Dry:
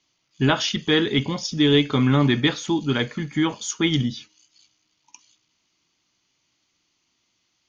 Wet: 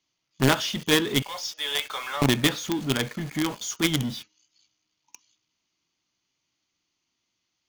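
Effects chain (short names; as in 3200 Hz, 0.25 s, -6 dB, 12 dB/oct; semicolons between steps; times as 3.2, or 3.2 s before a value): 1.22–2.22 steep high-pass 580 Hz 36 dB/oct; in parallel at -4 dB: companded quantiser 2-bit; on the sum: gain -8 dB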